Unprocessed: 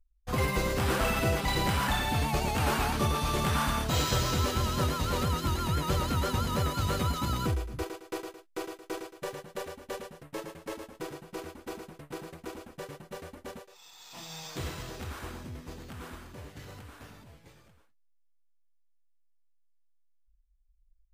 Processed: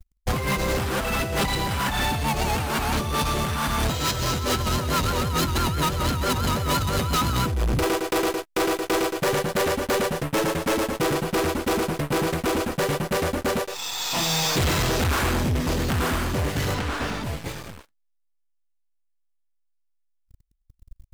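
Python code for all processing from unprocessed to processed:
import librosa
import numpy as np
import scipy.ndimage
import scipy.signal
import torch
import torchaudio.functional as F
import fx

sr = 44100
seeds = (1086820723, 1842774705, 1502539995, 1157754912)

y = fx.chain(x, sr, fx.lowpass(hz=5900.0, slope=12),
    fx.peak_eq(hz=110.0, db=-9.0, octaves=0.56), at=(16.74, 17.24))
y = fx.over_compress(y, sr, threshold_db=-34.0, ratio=-0.5)
y = fx.leveller(y, sr, passes=5)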